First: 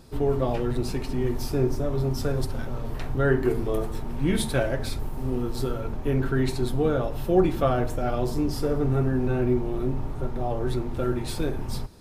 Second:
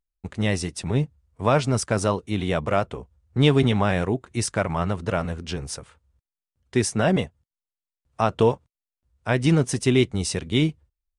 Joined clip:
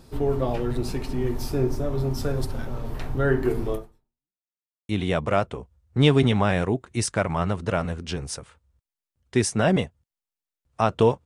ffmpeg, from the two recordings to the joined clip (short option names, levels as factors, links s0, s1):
-filter_complex "[0:a]apad=whole_dur=11.25,atrim=end=11.25,asplit=2[s0][s1];[s0]atrim=end=4.42,asetpts=PTS-STARTPTS,afade=t=out:st=3.73:d=0.69:c=exp[s2];[s1]atrim=start=4.42:end=4.89,asetpts=PTS-STARTPTS,volume=0[s3];[1:a]atrim=start=2.29:end=8.65,asetpts=PTS-STARTPTS,afade=t=in:d=0.004:c=hsin[s4];[s2][s3][s4]concat=n=3:v=0:a=1"